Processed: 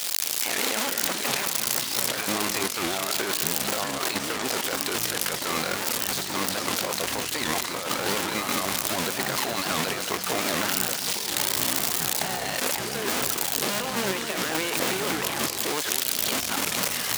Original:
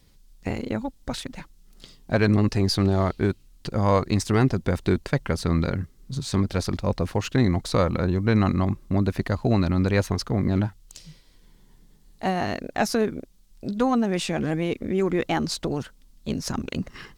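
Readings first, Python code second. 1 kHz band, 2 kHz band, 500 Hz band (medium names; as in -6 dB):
+1.0 dB, +5.5 dB, -4.5 dB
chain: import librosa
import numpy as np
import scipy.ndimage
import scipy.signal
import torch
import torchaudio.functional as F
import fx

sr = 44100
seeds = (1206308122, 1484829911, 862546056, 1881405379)

y = x + 0.5 * 10.0 ** (-23.0 / 20.0) * np.sign(x)
y = scipy.signal.sosfilt(scipy.signal.butter(2, 580.0, 'highpass', fs=sr, output='sos'), y)
y = fx.high_shelf(y, sr, hz=2300.0, db=9.5)
y = fx.over_compress(y, sr, threshold_db=-30.0, ratio=-1.0)
y = fx.echo_pitch(y, sr, ms=207, semitones=-6, count=3, db_per_echo=-6.0)
y = y + 10.0 ** (-9.5 / 20.0) * np.pad(y, (int(207 * sr / 1000.0), 0))[:len(y)]
y = fx.record_warp(y, sr, rpm=78.0, depth_cents=250.0)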